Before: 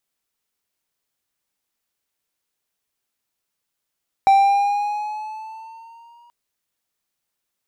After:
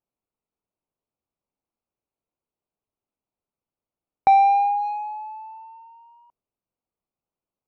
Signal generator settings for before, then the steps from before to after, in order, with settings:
gliding synth tone triangle, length 2.03 s, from 780 Hz, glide +3.5 st, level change -39 dB, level -7 dB
Wiener smoothing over 25 samples; LPF 3200 Hz 12 dB/oct

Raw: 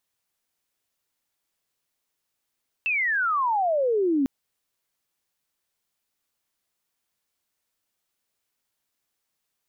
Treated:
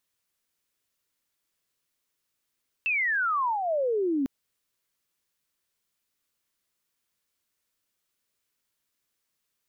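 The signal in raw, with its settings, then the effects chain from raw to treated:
chirp logarithmic 2700 Hz -> 260 Hz -21.5 dBFS -> -19 dBFS 1.40 s
bell 770 Hz -6.5 dB 0.48 oct; limiter -23 dBFS

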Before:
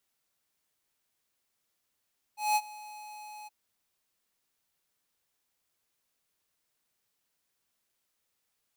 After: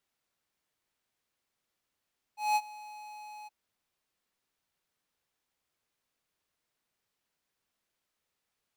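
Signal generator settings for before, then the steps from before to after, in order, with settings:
ADSR square 844 Hz, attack 0.188 s, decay 49 ms, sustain -21 dB, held 1.10 s, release 22 ms -24.5 dBFS
high shelf 5700 Hz -9 dB

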